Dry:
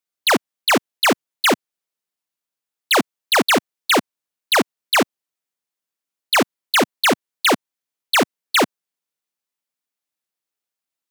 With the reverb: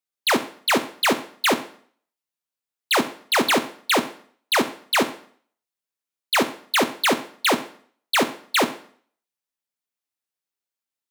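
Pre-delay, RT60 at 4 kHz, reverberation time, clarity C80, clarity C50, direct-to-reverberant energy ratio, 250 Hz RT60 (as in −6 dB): 6 ms, 0.50 s, 0.50 s, 16.5 dB, 13.5 dB, 8.5 dB, 0.50 s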